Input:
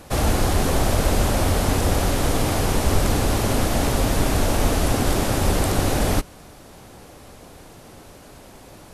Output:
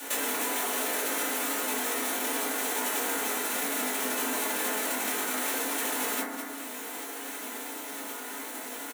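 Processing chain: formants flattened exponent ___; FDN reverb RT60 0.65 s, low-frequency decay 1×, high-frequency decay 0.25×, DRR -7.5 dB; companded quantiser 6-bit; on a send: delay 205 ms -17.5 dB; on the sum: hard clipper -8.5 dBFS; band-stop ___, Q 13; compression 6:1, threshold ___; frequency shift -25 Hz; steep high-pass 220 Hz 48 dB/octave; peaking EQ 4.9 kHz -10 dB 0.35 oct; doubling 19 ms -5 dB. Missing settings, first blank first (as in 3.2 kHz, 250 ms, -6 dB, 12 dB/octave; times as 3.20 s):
0.1, 1.2 kHz, -30 dBFS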